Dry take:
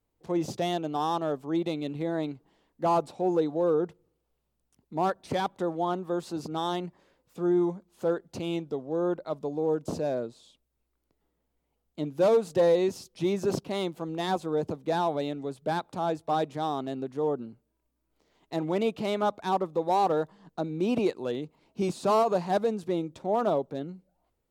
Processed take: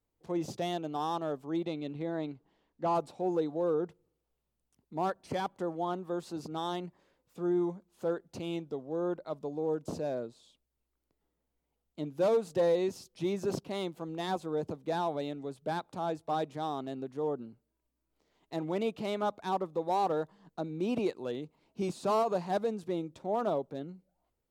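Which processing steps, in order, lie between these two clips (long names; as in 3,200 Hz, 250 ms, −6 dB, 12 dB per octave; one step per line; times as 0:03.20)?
0:01.65–0:02.95: Bessel low-pass filter 5,300 Hz, order 2
0:05.18–0:05.82: notch filter 3,700 Hz, Q 9.1
level −5 dB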